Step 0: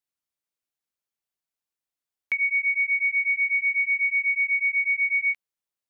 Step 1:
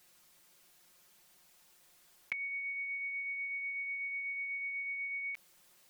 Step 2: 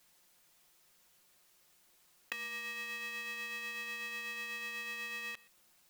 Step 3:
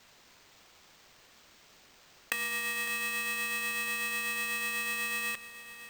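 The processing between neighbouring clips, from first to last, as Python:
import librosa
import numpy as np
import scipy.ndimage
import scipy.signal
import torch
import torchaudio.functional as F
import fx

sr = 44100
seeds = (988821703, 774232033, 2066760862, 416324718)

y1 = x + 0.94 * np.pad(x, (int(5.6 * sr / 1000.0), 0))[:len(x)]
y1 = fx.env_flatten(y1, sr, amount_pct=50)
y1 = F.gain(torch.from_numpy(y1), -7.5).numpy()
y2 = y1 + 10.0 ** (-22.5 / 20.0) * np.pad(y1, (int(125 * sr / 1000.0), 0))[:len(y1)]
y2 = y2 * np.sign(np.sin(2.0 * np.pi * 350.0 * np.arange(len(y2)) / sr))
y2 = F.gain(torch.from_numpy(y2), -3.0).numpy()
y3 = fx.sample_hold(y2, sr, seeds[0], rate_hz=11000.0, jitter_pct=0)
y3 = y3 + 10.0 ** (-14.0 / 20.0) * np.pad(y3, (int(555 * sr / 1000.0), 0))[:len(y3)]
y3 = F.gain(torch.from_numpy(y3), 8.0).numpy()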